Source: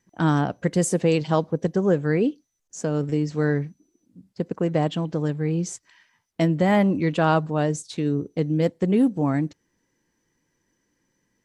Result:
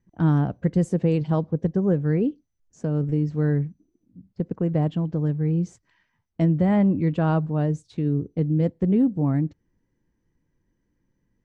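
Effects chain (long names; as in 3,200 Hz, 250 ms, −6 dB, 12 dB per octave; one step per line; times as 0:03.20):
RIAA equalisation playback
level −7 dB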